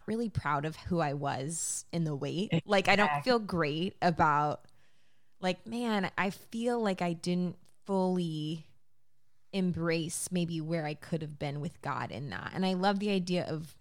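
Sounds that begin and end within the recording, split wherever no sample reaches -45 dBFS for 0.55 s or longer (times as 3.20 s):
5.41–8.61 s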